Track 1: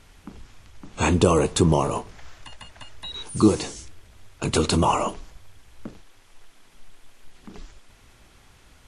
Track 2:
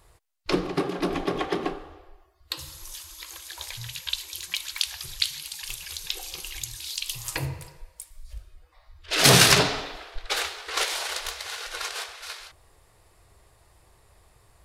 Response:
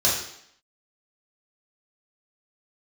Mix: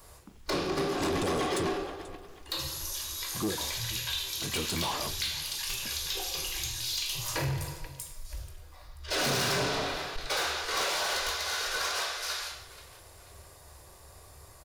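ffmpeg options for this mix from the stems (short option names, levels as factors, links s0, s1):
-filter_complex "[0:a]volume=0.266,asplit=3[s0][s1][s2];[s0]atrim=end=1.67,asetpts=PTS-STARTPTS,afade=t=out:st=1.666:d=0.004:c=hsin[s3];[s1]atrim=start=1.67:end=2.28,asetpts=PTS-STARTPTS,volume=0[s4];[s2]atrim=start=2.28,asetpts=PTS-STARTPTS,afade=t=in:d=0.004:c=hsin[s5];[s3][s4][s5]concat=n=3:v=0:a=1,asplit=2[s6][s7];[s7]volume=0.0794[s8];[1:a]bandreject=f=60:t=h:w=6,bandreject=f=120:t=h:w=6,bandreject=f=180:t=h:w=6,acrossover=split=1700|4500[s9][s10][s11];[s9]acompressor=threshold=0.0355:ratio=4[s12];[s10]acompressor=threshold=0.02:ratio=4[s13];[s11]acompressor=threshold=0.00447:ratio=4[s14];[s12][s13][s14]amix=inputs=3:normalize=0,volume=1.06,asplit=3[s15][s16][s17];[s16]volume=0.237[s18];[s17]volume=0.15[s19];[2:a]atrim=start_sample=2205[s20];[s18][s20]afir=irnorm=-1:irlink=0[s21];[s8][s19]amix=inputs=2:normalize=0,aecho=0:1:485|970|1455|1940|2425:1|0.38|0.144|0.0549|0.0209[s22];[s6][s15][s21][s22]amix=inputs=4:normalize=0,highshelf=f=10000:g=11.5,asoftclip=type=tanh:threshold=0.0531"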